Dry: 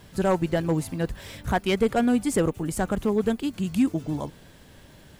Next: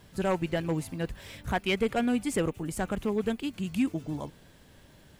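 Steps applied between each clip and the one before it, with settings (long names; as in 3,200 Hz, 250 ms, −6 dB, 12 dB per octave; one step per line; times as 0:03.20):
dynamic equaliser 2,500 Hz, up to +7 dB, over −48 dBFS, Q 1.7
level −5.5 dB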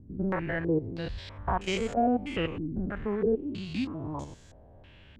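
spectrum averaged block by block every 100 ms
low shelf with overshoot 120 Hz +6 dB, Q 1.5
low-pass on a step sequencer 3.1 Hz 270–6,900 Hz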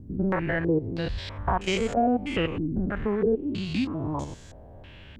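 downward compressor 1.5 to 1, threshold −34 dBFS, peak gain reduction 5 dB
level +7 dB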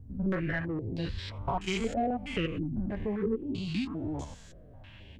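flanger 0.48 Hz, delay 2.3 ms, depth 9 ms, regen −27%
in parallel at −3.5 dB: soft clipping −24.5 dBFS, distortion −14 dB
on the sum: notch on a step sequencer 3.8 Hz 340–1,700 Hz
level −4 dB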